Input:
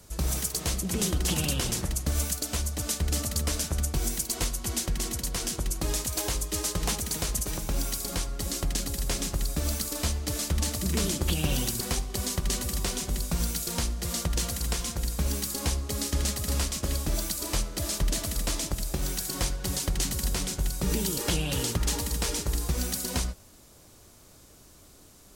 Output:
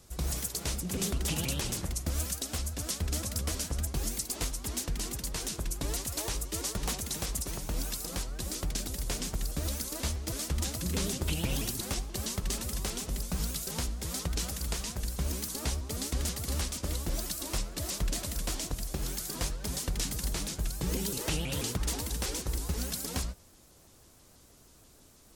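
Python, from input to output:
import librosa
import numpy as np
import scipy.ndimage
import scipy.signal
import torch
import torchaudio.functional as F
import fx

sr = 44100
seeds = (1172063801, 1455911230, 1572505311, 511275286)

y = fx.vibrato_shape(x, sr, shape='saw_up', rate_hz=6.2, depth_cents=250.0)
y = F.gain(torch.from_numpy(y), -4.5).numpy()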